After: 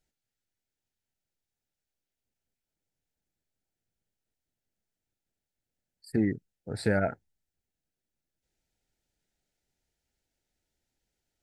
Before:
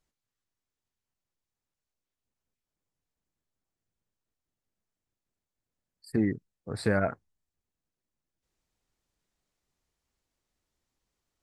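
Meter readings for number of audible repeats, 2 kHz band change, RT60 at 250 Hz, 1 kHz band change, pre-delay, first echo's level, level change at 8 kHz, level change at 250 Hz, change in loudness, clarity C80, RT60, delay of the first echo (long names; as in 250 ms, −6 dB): no echo audible, −0.5 dB, no reverb audible, −1.0 dB, no reverb audible, no echo audible, 0.0 dB, 0.0 dB, 0.0 dB, no reverb audible, no reverb audible, no echo audible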